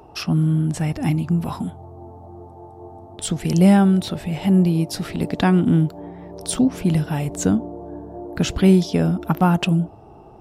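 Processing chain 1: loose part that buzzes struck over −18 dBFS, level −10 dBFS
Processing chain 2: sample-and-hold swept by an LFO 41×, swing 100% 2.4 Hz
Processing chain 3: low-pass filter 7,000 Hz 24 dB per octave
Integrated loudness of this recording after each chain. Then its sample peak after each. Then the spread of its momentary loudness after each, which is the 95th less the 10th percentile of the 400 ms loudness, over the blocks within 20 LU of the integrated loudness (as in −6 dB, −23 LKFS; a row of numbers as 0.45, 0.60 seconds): −18.5, −19.5, −19.5 LKFS; −3.0, −4.0, −4.0 dBFS; 16, 17, 17 LU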